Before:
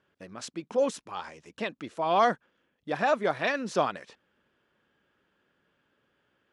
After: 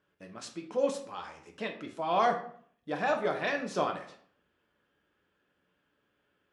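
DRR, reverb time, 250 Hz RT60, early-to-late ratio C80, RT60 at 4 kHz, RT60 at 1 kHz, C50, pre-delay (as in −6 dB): 2.5 dB, 0.55 s, 0.65 s, 13.0 dB, 0.40 s, 0.55 s, 9.0 dB, 3 ms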